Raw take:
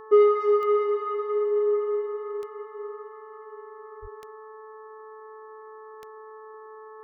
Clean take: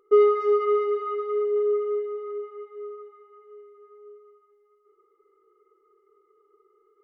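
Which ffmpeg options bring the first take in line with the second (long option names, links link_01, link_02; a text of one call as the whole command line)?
ffmpeg -i in.wav -filter_complex "[0:a]adeclick=threshold=4,bandreject=frequency=434.7:width_type=h:width=4,bandreject=frequency=869.4:width_type=h:width=4,bandreject=frequency=1304.1:width_type=h:width=4,bandreject=frequency=1738.8:width_type=h:width=4,bandreject=frequency=1100:width=30,asplit=3[link_01][link_02][link_03];[link_01]afade=type=out:start_time=4.01:duration=0.02[link_04];[link_02]highpass=frequency=140:width=0.5412,highpass=frequency=140:width=1.3066,afade=type=in:start_time=4.01:duration=0.02,afade=type=out:start_time=4.13:duration=0.02[link_05];[link_03]afade=type=in:start_time=4.13:duration=0.02[link_06];[link_04][link_05][link_06]amix=inputs=3:normalize=0" out.wav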